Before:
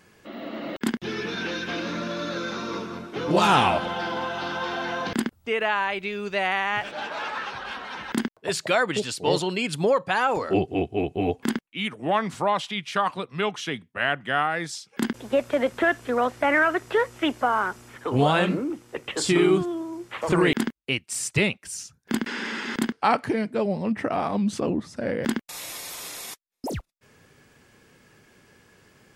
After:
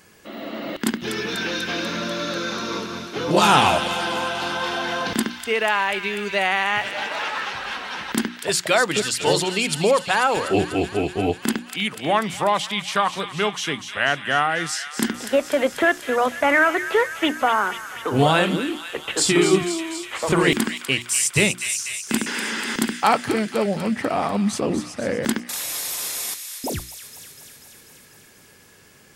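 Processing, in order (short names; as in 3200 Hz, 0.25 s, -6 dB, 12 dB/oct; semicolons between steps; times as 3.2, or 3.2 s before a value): high shelf 5200 Hz +8.5 dB; notches 60/120/180/240/300/360 Hz; on a send: thin delay 0.245 s, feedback 71%, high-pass 1800 Hz, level -8 dB; on the sum: gain +3 dB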